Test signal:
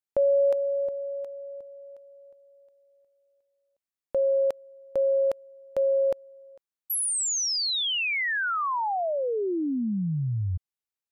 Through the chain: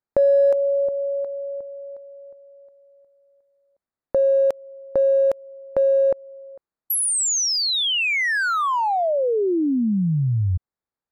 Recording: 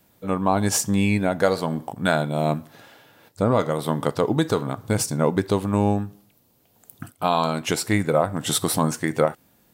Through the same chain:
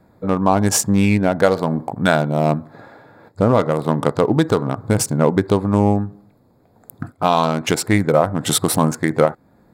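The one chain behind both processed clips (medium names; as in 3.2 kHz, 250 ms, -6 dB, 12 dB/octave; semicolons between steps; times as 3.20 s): local Wiener filter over 15 samples; in parallel at -0.5 dB: compression, threshold -33 dBFS; on the sum: trim +4 dB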